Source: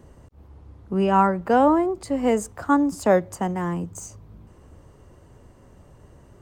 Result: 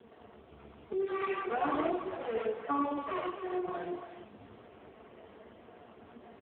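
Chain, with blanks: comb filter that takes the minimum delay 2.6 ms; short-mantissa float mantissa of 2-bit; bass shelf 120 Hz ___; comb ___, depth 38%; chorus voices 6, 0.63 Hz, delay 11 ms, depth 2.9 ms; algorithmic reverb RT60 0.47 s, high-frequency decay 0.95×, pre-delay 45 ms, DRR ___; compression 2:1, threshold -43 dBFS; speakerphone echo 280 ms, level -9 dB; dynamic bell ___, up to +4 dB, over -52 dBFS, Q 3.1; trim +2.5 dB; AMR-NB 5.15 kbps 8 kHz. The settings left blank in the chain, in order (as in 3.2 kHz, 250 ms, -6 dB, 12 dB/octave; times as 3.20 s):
-10 dB, 4.4 ms, -5 dB, 530 Hz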